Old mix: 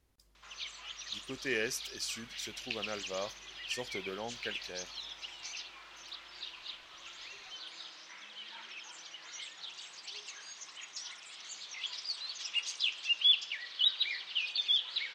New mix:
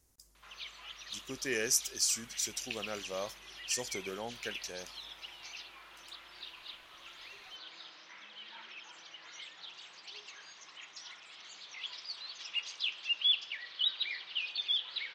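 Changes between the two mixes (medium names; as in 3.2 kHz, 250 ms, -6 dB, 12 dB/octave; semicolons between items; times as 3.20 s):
speech: add resonant high shelf 4.7 kHz +10 dB, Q 1.5; background: add distance through air 120 m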